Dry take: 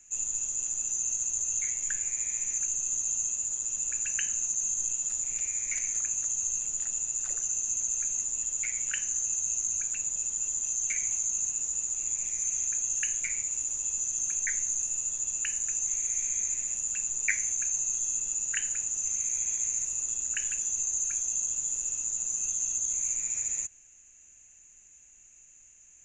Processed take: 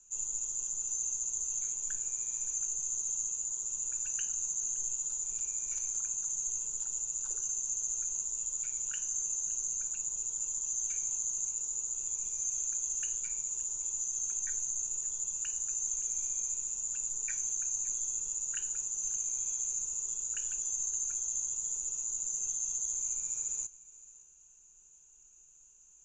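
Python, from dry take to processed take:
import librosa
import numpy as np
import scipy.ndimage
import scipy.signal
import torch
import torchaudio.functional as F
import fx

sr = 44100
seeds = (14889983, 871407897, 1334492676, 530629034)

y = scipy.signal.sosfilt(scipy.signal.butter(4, 8400.0, 'lowpass', fs=sr, output='sos'), x)
y = fx.fixed_phaser(y, sr, hz=410.0, stages=8)
y = y + 0.34 * np.pad(y, (int(2.1 * sr / 1000.0), 0))[:len(y)]
y = y + 10.0 ** (-20.5 / 20.0) * np.pad(y, (int(568 * sr / 1000.0), 0))[:len(y)]
y = y * librosa.db_to_amplitude(-3.0)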